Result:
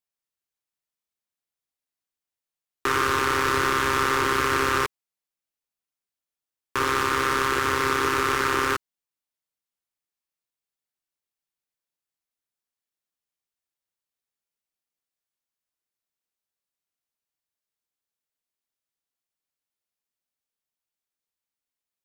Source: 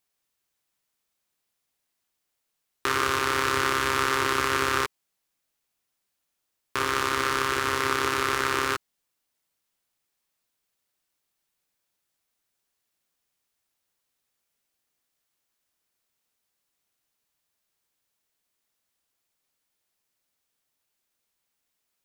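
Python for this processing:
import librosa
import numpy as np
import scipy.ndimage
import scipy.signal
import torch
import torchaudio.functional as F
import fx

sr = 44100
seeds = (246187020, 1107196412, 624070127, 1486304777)

y = fx.leveller(x, sr, passes=3)
y = y * librosa.db_to_amplitude(-6.0)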